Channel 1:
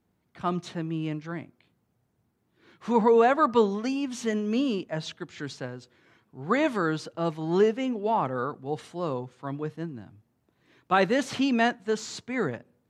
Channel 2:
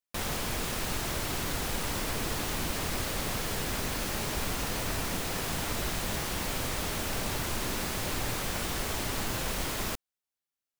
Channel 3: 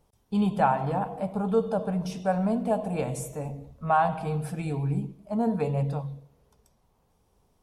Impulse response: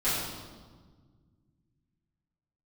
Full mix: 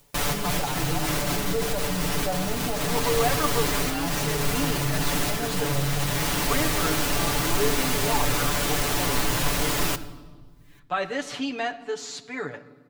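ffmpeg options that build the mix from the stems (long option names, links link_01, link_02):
-filter_complex "[0:a]lowshelf=frequency=360:gain=-10,acompressor=threshold=-34dB:ratio=1.5,volume=-1dB,asplit=3[link_01][link_02][link_03];[link_02]volume=-23.5dB[link_04];[1:a]acompressor=mode=upward:threshold=-55dB:ratio=2.5,volume=28dB,asoftclip=hard,volume=-28dB,volume=-1dB,asplit=2[link_05][link_06];[link_06]volume=-17dB[link_07];[2:a]volume=-5.5dB[link_08];[link_03]apad=whole_len=336402[link_09];[link_08][link_09]sidechaincompress=threshold=-34dB:ratio=8:attack=5.8:release=734[link_10];[link_05][link_10]amix=inputs=2:normalize=0,acontrast=88,alimiter=limit=-22.5dB:level=0:latency=1:release=24,volume=0dB[link_11];[3:a]atrim=start_sample=2205[link_12];[link_04][link_07]amix=inputs=2:normalize=0[link_13];[link_13][link_12]afir=irnorm=-1:irlink=0[link_14];[link_01][link_11][link_14]amix=inputs=3:normalize=0,aecho=1:1:6.9:0.9"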